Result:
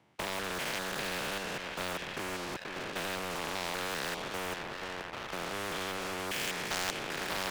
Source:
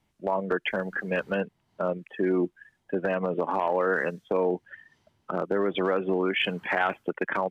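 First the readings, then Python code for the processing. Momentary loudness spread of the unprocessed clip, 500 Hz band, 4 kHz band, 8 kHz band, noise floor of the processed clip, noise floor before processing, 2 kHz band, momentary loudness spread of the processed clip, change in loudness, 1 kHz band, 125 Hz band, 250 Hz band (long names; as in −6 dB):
7 LU, −13.0 dB, +1.5 dB, can't be measured, −43 dBFS, −74 dBFS, −5.0 dB, 5 LU, −7.5 dB, −7.0 dB, −8.0 dB, −12.0 dB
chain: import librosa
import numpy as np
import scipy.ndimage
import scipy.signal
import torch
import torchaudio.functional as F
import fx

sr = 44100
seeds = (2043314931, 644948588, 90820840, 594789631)

p1 = fx.spec_steps(x, sr, hold_ms=200)
p2 = fx.lowpass(p1, sr, hz=1800.0, slope=6)
p3 = fx.rider(p2, sr, range_db=3, speed_s=0.5)
p4 = scipy.signal.sosfilt(scipy.signal.bessel(6, 160.0, 'highpass', norm='mag', fs=sr, output='sos'), p3)
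p5 = p4 + fx.echo_thinned(p4, sr, ms=481, feedback_pct=55, hz=210.0, wet_db=-17.0, dry=0)
p6 = fx.leveller(p5, sr, passes=2)
p7 = fx.peak_eq(p6, sr, hz=230.0, db=-6.5, octaves=0.77)
y = fx.spectral_comp(p7, sr, ratio=4.0)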